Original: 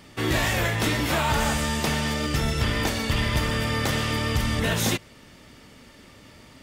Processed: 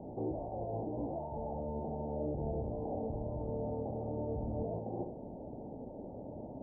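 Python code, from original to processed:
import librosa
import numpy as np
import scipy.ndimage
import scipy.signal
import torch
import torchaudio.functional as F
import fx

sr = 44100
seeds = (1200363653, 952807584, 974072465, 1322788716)

y = fx.low_shelf(x, sr, hz=380.0, db=-9.0)
y = fx.echo_feedback(y, sr, ms=69, feedback_pct=22, wet_db=-8.5)
y = fx.over_compress(y, sr, threshold_db=-34.0, ratio=-1.0)
y = 10.0 ** (-34.0 / 20.0) * np.tanh(y / 10.0 ** (-34.0 / 20.0))
y = scipy.signal.sosfilt(scipy.signal.butter(12, 820.0, 'lowpass', fs=sr, output='sos'), y)
y = fx.low_shelf(y, sr, hz=130.0, db=-4.0)
y = y * 10.0 ** (6.0 / 20.0)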